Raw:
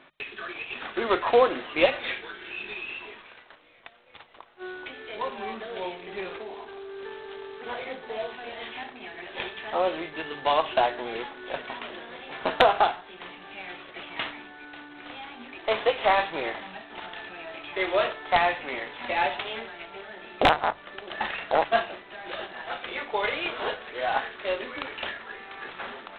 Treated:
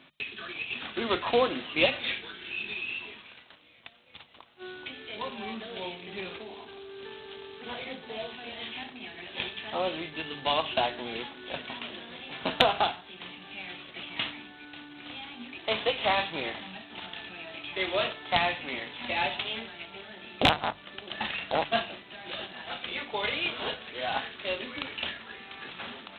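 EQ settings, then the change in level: HPF 61 Hz; band shelf 830 Hz -9 dB 2.9 oct; +3.5 dB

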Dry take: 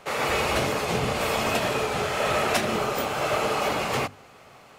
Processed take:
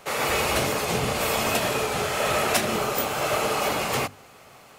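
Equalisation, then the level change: high shelf 7500 Hz +10.5 dB; 0.0 dB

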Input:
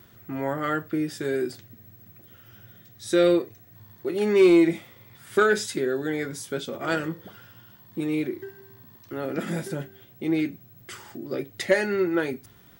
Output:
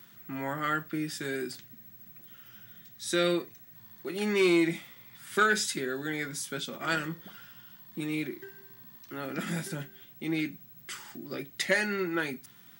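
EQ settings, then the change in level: HPF 150 Hz 24 dB/oct; bell 460 Hz -11.5 dB 1.9 oct; +1.5 dB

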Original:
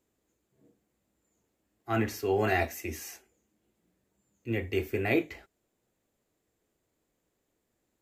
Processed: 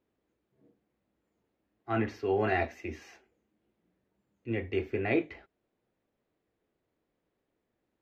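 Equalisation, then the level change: air absorption 240 m; low shelf 110 Hz -5 dB; 0.0 dB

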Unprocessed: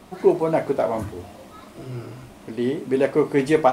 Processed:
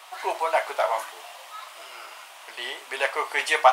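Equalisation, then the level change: HPF 810 Hz 24 dB/oct; bell 3000 Hz +4.5 dB 0.5 oct; +6.0 dB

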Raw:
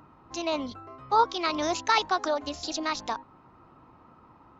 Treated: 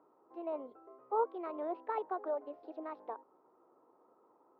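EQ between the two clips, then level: ladder band-pass 500 Hz, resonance 50%; air absorption 360 m; low shelf 320 Hz -6.5 dB; +4.5 dB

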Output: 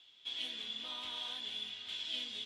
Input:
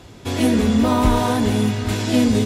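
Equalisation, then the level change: band-pass 3300 Hz, Q 8.5; -2.0 dB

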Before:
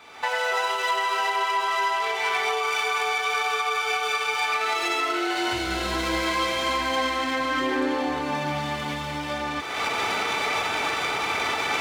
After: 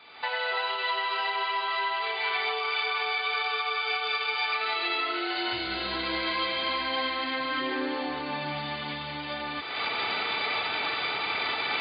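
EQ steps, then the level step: HPF 87 Hz; brick-wall FIR low-pass 4900 Hz; high shelf 3000 Hz +10 dB; -6.5 dB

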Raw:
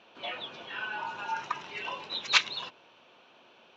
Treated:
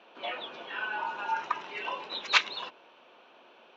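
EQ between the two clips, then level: HPF 270 Hz 12 dB/oct; high shelf 3900 Hz -11.5 dB; +3.5 dB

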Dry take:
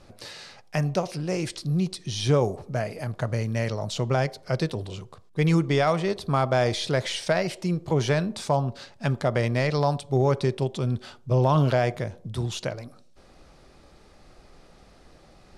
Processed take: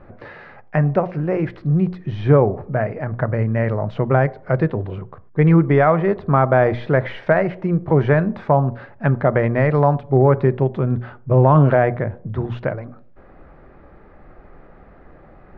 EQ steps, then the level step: Chebyshev low-pass 1800 Hz, order 3; notches 60/120/180/240 Hz; +8.5 dB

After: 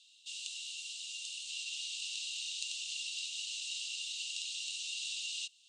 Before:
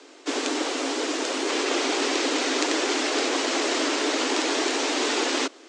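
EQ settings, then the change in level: dynamic EQ 3600 Hz, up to -6 dB, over -46 dBFS, Q 2.9; rippled Chebyshev high-pass 2700 Hz, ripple 9 dB; tilt -3.5 dB/oct; +5.0 dB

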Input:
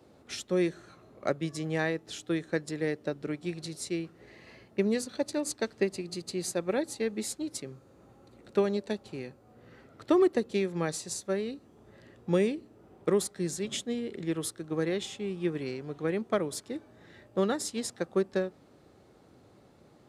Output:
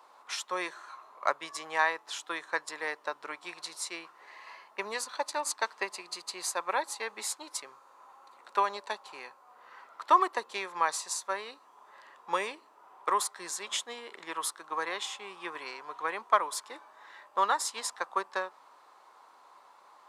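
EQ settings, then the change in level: resonant high-pass 1000 Hz, resonance Q 6.8; +2.0 dB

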